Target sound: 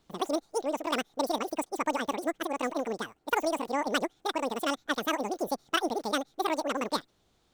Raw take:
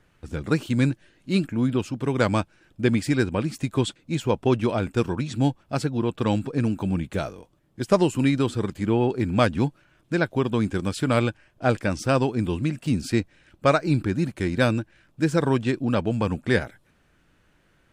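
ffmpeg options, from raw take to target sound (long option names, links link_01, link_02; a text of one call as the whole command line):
ffmpeg -i in.wav -af "asetrate=104958,aresample=44100,volume=-7.5dB" out.wav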